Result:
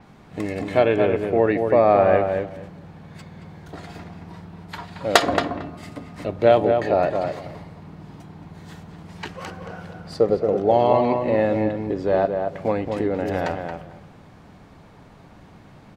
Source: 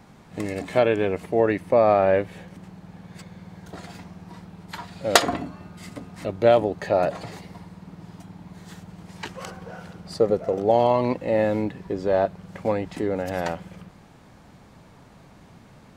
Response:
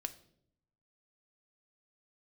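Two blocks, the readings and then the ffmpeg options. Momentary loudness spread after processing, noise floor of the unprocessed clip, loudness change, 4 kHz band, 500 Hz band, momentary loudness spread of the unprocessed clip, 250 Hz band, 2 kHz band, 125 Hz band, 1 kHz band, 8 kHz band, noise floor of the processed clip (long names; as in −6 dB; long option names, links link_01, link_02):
21 LU, −51 dBFS, +2.0 dB, 0.0 dB, +2.5 dB, 22 LU, +3.0 dB, +2.0 dB, +2.5 dB, +3.0 dB, −4.0 dB, −48 dBFS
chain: -filter_complex "[0:a]asplit=2[link_01][link_02];[link_02]adelay=225,lowpass=frequency=2000:poles=1,volume=-5dB,asplit=2[link_03][link_04];[link_04]adelay=225,lowpass=frequency=2000:poles=1,volume=0.18,asplit=2[link_05][link_06];[link_06]adelay=225,lowpass=frequency=2000:poles=1,volume=0.18[link_07];[link_01][link_03][link_05][link_07]amix=inputs=4:normalize=0,asplit=2[link_08][link_09];[1:a]atrim=start_sample=2205,lowpass=5400[link_10];[link_09][link_10]afir=irnorm=-1:irlink=0,volume=-1dB[link_11];[link_08][link_11]amix=inputs=2:normalize=0,adynamicequalizer=threshold=0.00794:dfrequency=6900:dqfactor=0.7:tfrequency=6900:tqfactor=0.7:attack=5:release=100:ratio=0.375:range=2.5:mode=cutabove:tftype=highshelf,volume=-3dB"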